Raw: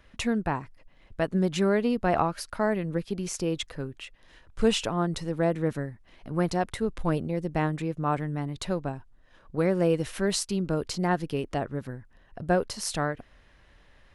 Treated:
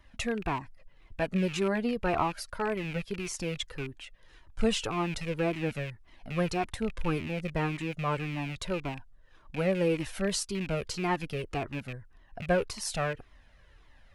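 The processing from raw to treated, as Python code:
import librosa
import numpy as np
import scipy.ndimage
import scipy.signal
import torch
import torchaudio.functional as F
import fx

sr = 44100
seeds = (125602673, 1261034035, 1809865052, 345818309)

y = fx.rattle_buzz(x, sr, strikes_db=-38.0, level_db=-27.0)
y = fx.comb_cascade(y, sr, direction='falling', hz=1.8)
y = F.gain(torch.from_numpy(y), 1.5).numpy()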